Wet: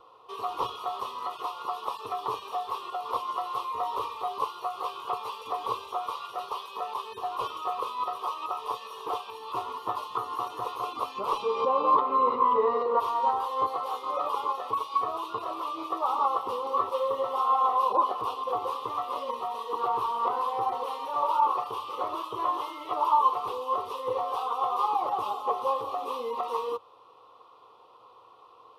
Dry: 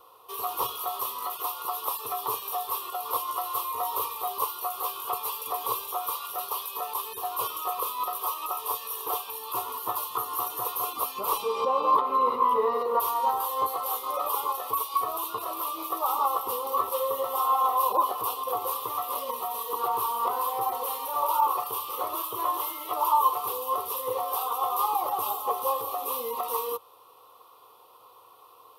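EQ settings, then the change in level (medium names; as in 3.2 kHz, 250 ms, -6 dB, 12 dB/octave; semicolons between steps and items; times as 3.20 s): tape spacing loss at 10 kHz 33 dB; peaking EQ 290 Hz +3 dB 0.22 oct; treble shelf 2.9 kHz +11 dB; +2.0 dB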